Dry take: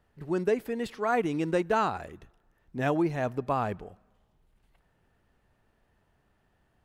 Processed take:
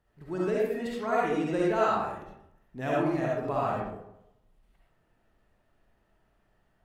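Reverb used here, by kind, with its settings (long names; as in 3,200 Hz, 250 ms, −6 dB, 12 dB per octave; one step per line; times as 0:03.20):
comb and all-pass reverb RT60 0.77 s, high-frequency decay 0.5×, pre-delay 25 ms, DRR −5.5 dB
level −6.5 dB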